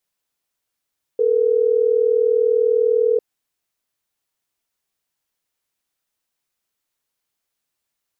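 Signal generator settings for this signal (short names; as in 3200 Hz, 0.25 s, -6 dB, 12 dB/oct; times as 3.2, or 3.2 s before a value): call progress tone ringback tone, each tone -16.5 dBFS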